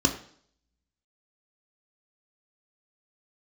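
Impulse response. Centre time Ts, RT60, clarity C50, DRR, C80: 19 ms, 0.55 s, 10.5 dB, 2.5 dB, 14.0 dB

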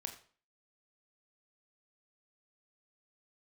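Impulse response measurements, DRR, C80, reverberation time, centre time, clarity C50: 4.5 dB, 13.5 dB, 0.45 s, 14 ms, 10.5 dB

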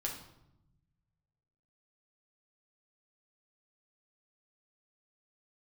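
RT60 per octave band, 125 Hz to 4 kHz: 2.1, 1.5, 0.90, 0.80, 0.65, 0.60 s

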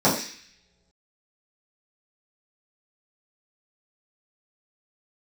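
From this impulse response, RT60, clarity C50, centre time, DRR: not exponential, 6.5 dB, 33 ms, -10.0 dB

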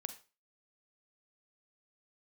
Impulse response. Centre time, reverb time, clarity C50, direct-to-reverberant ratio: 7 ms, 0.30 s, 12.0 dB, 9.5 dB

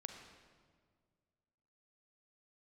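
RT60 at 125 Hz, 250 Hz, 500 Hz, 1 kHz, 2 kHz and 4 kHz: 2.3, 2.2, 2.0, 1.7, 1.4, 1.2 s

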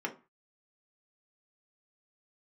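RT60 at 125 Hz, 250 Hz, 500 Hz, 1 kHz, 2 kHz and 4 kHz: 0.40, 0.30, 0.30, 0.35, 0.30, 0.20 s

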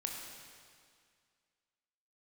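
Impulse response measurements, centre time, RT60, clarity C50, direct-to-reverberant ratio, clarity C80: 82 ms, 2.1 s, 2.0 dB, 0.0 dB, 3.0 dB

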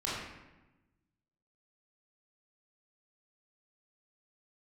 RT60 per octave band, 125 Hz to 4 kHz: 1.6, 1.4, 1.1, 1.0, 0.95, 0.70 s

